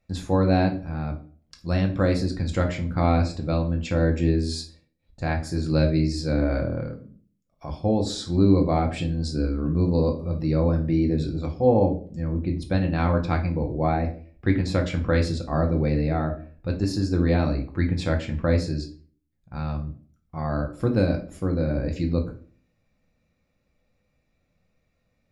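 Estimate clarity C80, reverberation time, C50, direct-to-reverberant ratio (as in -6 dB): 17.0 dB, 0.45 s, 11.5 dB, 1.5 dB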